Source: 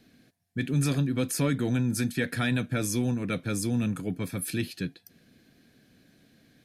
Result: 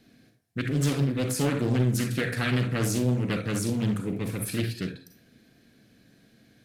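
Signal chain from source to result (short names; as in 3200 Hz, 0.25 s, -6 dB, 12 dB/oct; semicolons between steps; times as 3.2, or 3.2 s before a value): short-mantissa float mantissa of 6-bit; on a send at -4.5 dB: reverb RT60 0.45 s, pre-delay 32 ms; on the sum: Doppler distortion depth 0.65 ms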